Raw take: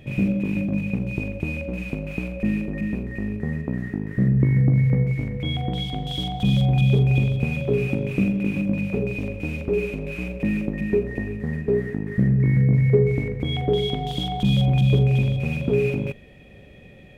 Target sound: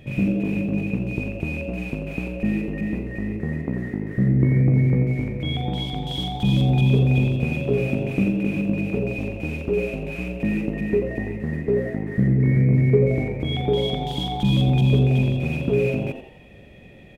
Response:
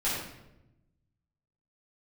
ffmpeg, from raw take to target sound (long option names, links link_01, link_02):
-filter_complex "[0:a]asplit=5[link_01][link_02][link_03][link_04][link_05];[link_02]adelay=86,afreqshift=120,volume=-11dB[link_06];[link_03]adelay=172,afreqshift=240,volume=-19.9dB[link_07];[link_04]adelay=258,afreqshift=360,volume=-28.7dB[link_08];[link_05]adelay=344,afreqshift=480,volume=-37.6dB[link_09];[link_01][link_06][link_07][link_08][link_09]amix=inputs=5:normalize=0"